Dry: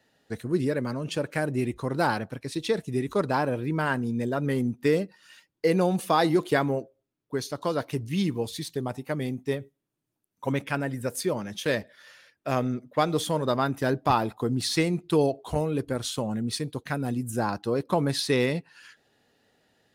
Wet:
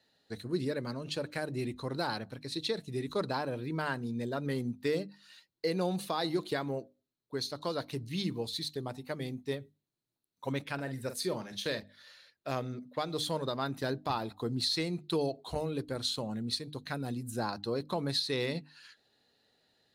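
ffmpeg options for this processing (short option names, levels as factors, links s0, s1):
-filter_complex "[0:a]asettb=1/sr,asplit=3[s0][s1][s2];[s0]atrim=end=10.744[s3];[s1]atrim=start=10.74:end=11.8,asetpts=PTS-STARTPTS,afade=t=in:d=0.004:c=qsin,afade=t=out:st=1.056:d=0.004:c=qsin,asplit=2[s4][s5];[s5]adelay=45,volume=0.316[s6];[s4][s6]amix=inputs=2:normalize=0,atrim=end_sample=46746[s7];[s2]atrim=start=11.796[s8];[s3][s7]acrossfade=d=0.004:c1=hsin:c2=qsin[s9];[s9][s8]acrossfade=d=0.004:c1=qsin:c2=hsin,equalizer=f=4100:t=o:w=0.32:g=13.5,bandreject=f=50:t=h:w=6,bandreject=f=100:t=h:w=6,bandreject=f=150:t=h:w=6,bandreject=f=200:t=h:w=6,bandreject=f=250:t=h:w=6,bandreject=f=300:t=h:w=6,alimiter=limit=0.2:level=0:latency=1:release=241,volume=0.447"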